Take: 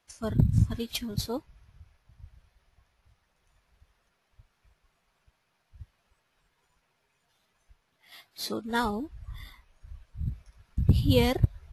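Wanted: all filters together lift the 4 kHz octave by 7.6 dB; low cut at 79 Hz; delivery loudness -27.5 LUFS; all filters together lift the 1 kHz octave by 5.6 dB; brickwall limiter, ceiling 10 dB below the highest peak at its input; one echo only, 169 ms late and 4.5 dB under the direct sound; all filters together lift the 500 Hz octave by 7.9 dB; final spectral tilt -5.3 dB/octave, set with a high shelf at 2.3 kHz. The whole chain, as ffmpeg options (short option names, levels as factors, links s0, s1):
-af "highpass=79,equalizer=f=500:t=o:g=7.5,equalizer=f=1000:t=o:g=3.5,highshelf=f=2300:g=3.5,equalizer=f=4000:t=o:g=6,alimiter=limit=0.211:level=0:latency=1,aecho=1:1:169:0.596"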